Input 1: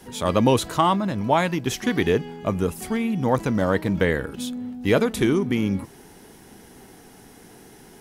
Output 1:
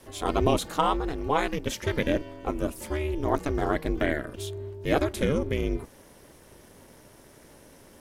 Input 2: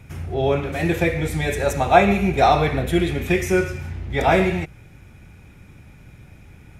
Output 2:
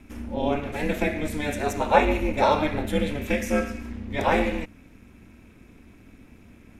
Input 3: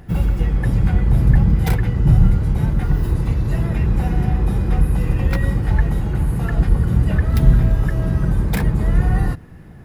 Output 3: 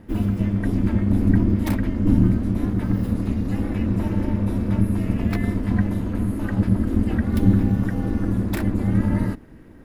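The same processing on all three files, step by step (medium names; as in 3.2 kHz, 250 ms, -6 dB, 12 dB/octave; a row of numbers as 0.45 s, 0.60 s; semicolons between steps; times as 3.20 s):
ring modulator 150 Hz; trim -2 dB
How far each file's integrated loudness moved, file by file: -5.5 LU, -5.0 LU, -3.5 LU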